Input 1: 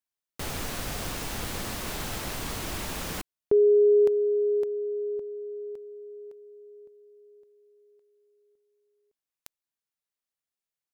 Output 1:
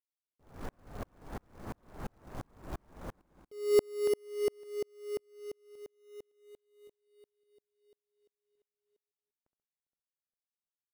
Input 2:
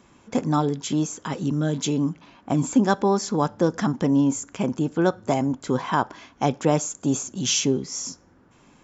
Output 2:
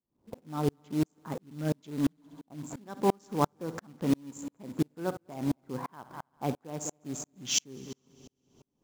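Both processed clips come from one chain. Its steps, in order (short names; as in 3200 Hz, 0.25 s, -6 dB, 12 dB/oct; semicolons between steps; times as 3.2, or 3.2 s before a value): Wiener smoothing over 15 samples; low-pass opened by the level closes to 660 Hz, open at -18.5 dBFS; short-mantissa float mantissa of 2-bit; multi-head echo 67 ms, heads first and third, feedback 62%, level -20 dB; dB-ramp tremolo swelling 2.9 Hz, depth 40 dB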